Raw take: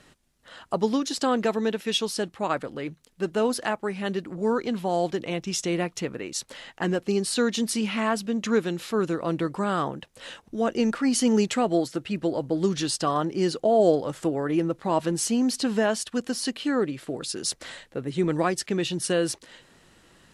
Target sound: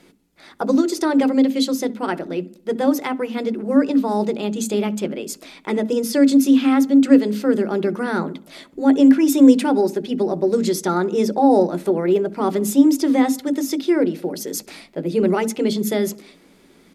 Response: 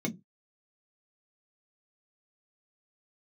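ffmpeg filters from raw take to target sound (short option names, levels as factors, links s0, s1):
-filter_complex "[0:a]bandreject=f=60:t=h:w=6,bandreject=f=120:t=h:w=6,bandreject=f=180:t=h:w=6,asplit=2[s0][s1];[1:a]atrim=start_sample=2205[s2];[s1][s2]afir=irnorm=-1:irlink=0,volume=0.335[s3];[s0][s3]amix=inputs=2:normalize=0,asetrate=52920,aresample=44100,asplit=2[s4][s5];[s5]adelay=67,lowpass=f=2000:p=1,volume=0.0944,asplit=2[s6][s7];[s7]adelay=67,lowpass=f=2000:p=1,volume=0.55,asplit=2[s8][s9];[s9]adelay=67,lowpass=f=2000:p=1,volume=0.55,asplit=2[s10][s11];[s11]adelay=67,lowpass=f=2000:p=1,volume=0.55[s12];[s4][s6][s8][s10][s12]amix=inputs=5:normalize=0,volume=0.891"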